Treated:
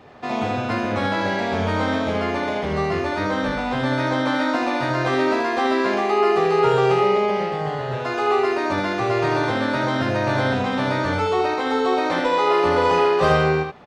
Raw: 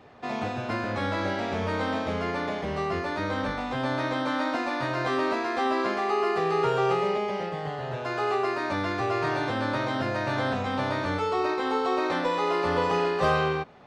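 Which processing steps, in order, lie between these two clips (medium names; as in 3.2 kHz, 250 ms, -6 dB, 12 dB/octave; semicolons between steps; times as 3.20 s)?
delay 77 ms -5 dB; trim +5 dB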